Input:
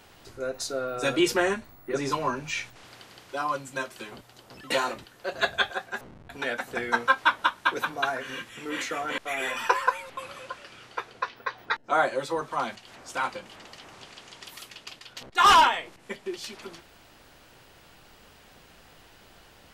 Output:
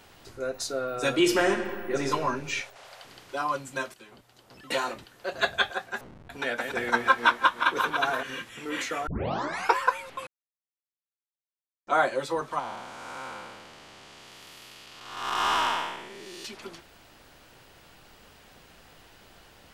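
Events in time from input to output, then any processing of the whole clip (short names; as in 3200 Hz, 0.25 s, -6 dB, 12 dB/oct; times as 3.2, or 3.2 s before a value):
1.13–2.08 reverb throw, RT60 2 s, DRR 6 dB
2.61–3.05 resonant low shelf 450 Hz -10 dB, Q 3
3.94–5.74 fade in equal-power, from -12 dB
6.39–8.23 regenerating reverse delay 0.178 s, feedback 52%, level -5.5 dB
9.07 tape start 0.68 s
10.27–11.87 mute
12.59–16.45 time blur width 0.42 s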